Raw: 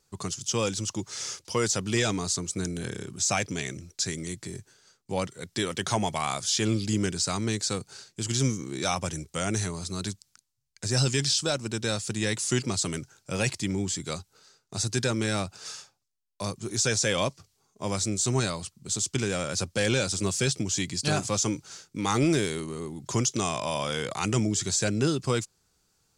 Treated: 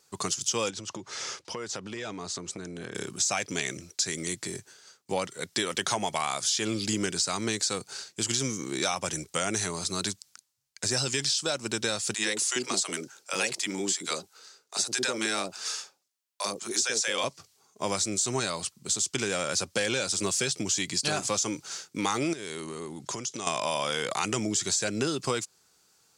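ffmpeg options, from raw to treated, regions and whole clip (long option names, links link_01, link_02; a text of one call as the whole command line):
ffmpeg -i in.wav -filter_complex "[0:a]asettb=1/sr,asplit=3[link_01][link_02][link_03];[link_01]atrim=end=0.704[link_04];[link_02]atrim=start=0.7:end=2.95,asetpts=PTS-STARTPTS,afade=type=in:duration=0.004:curve=qsin,afade=type=out:start_time=2.246:duration=0.004:curve=qsin,aemphasis=mode=reproduction:type=75fm,acompressor=threshold=-35dB:ratio=10:attack=3.2:release=140:knee=1:detection=peak[link_05];[link_03]atrim=start=2.946[link_06];[link_04][link_05]acrossfade=duration=0.004:curve1=hsin:curve2=qsin[link_07];[link_07][link_06]acrossfade=duration=0.004:curve1=qsin:curve2=hsin,asettb=1/sr,asplit=3[link_08][link_09][link_10];[link_08]atrim=end=12.144[link_11];[link_09]atrim=start=12.14:end=17.24,asetpts=PTS-STARTPTS,afade=type=in:duration=0.004:curve=qsin,afade=type=out:start_time=5.096:duration=0.004:curve=qsin,highpass=260,acrossover=split=600[link_12][link_13];[link_12]adelay=40[link_14];[link_14][link_13]amix=inputs=2:normalize=0,atrim=end_sample=224910[link_15];[link_10]atrim=start=17.236[link_16];[link_11][link_15]acrossfade=duration=0.004:curve1=hsin:curve2=qsin[link_17];[link_17][link_16]acrossfade=duration=0.004:curve1=qsin:curve2=hsin,asettb=1/sr,asplit=3[link_18][link_19][link_20];[link_18]atrim=end=22.334[link_21];[link_19]atrim=start=22.33:end=23.47,asetpts=PTS-STARTPTS,afade=type=in:duration=0.004:curve=qsin,afade=type=out:start_time=1.136:duration=0.004:curve=qsin,lowpass=11000,acompressor=threshold=-35dB:ratio=6:attack=3.2:release=140:knee=1:detection=peak[link_22];[link_20]atrim=start=23.466[link_23];[link_21][link_22]acrossfade=duration=0.004:curve1=hsin:curve2=qsin[link_24];[link_24][link_23]acrossfade=duration=0.004:curve1=qsin:curve2=hsin,highpass=frequency=430:poles=1,acompressor=threshold=-31dB:ratio=6,volume=6.5dB" out.wav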